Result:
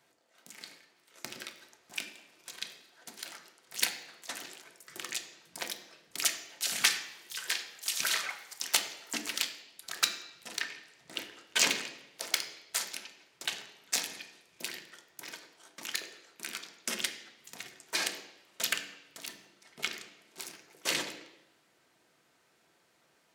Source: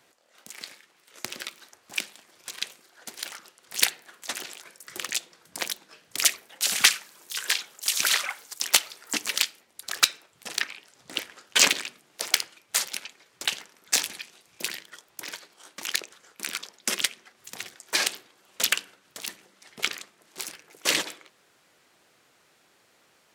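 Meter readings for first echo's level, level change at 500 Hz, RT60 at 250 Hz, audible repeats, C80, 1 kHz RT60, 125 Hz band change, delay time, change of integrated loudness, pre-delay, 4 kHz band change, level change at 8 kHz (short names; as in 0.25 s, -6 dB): none, -5.5 dB, 0.85 s, none, 12.0 dB, 0.90 s, n/a, none, -7.5 dB, 3 ms, -7.0 dB, -7.5 dB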